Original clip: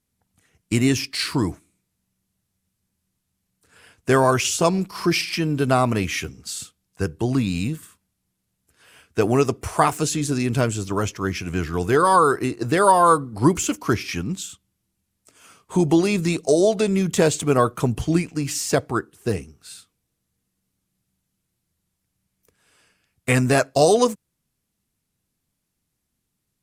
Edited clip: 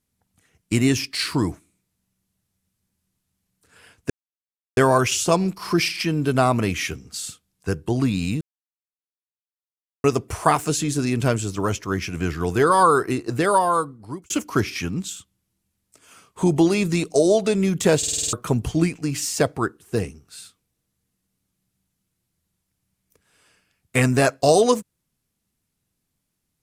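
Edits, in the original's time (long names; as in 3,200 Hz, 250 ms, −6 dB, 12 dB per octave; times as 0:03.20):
0:04.10: splice in silence 0.67 s
0:07.74–0:09.37: silence
0:12.58–0:13.63: fade out
0:17.31: stutter in place 0.05 s, 7 plays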